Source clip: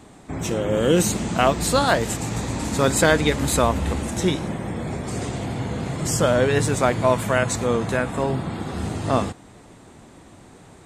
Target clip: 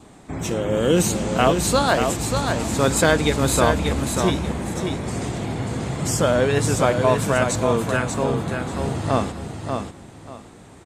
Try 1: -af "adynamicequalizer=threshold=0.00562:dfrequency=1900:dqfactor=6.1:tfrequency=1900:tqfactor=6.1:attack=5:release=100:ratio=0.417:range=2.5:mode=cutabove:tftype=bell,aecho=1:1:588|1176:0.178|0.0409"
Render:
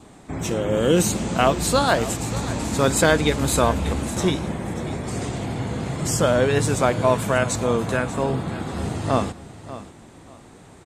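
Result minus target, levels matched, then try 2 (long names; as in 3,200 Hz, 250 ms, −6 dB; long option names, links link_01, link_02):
echo-to-direct −9.5 dB
-af "adynamicequalizer=threshold=0.00562:dfrequency=1900:dqfactor=6.1:tfrequency=1900:tqfactor=6.1:attack=5:release=100:ratio=0.417:range=2.5:mode=cutabove:tftype=bell,aecho=1:1:588|1176|1764:0.531|0.122|0.0281"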